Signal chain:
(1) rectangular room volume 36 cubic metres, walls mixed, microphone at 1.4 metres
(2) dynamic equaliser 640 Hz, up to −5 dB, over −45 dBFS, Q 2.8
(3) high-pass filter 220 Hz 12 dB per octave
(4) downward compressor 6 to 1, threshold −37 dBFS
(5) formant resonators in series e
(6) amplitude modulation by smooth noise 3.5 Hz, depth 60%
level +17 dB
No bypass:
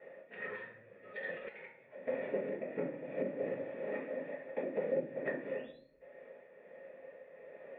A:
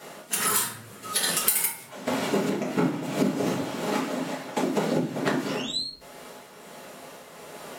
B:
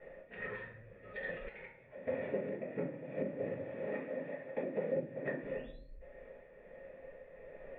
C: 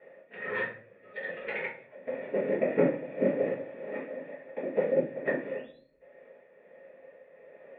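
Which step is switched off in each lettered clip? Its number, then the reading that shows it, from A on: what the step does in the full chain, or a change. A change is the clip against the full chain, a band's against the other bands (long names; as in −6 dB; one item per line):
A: 5, 500 Hz band −11.5 dB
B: 3, 125 Hz band +6.0 dB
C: 4, change in crest factor +4.5 dB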